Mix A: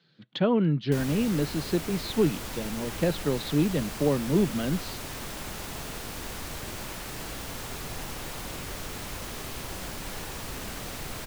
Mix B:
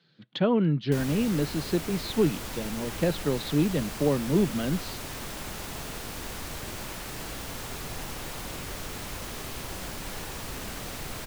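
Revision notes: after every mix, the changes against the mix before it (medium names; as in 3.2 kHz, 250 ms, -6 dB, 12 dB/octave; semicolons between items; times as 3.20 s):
no change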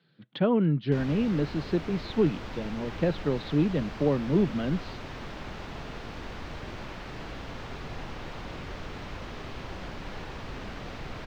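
master: add distance through air 220 m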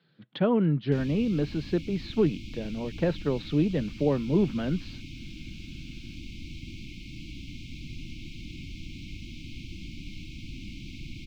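background: add brick-wall FIR band-stop 350–2100 Hz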